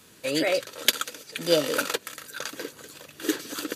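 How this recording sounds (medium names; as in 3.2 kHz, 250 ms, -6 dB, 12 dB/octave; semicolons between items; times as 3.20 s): noise floor -54 dBFS; spectral tilt -2.5 dB/octave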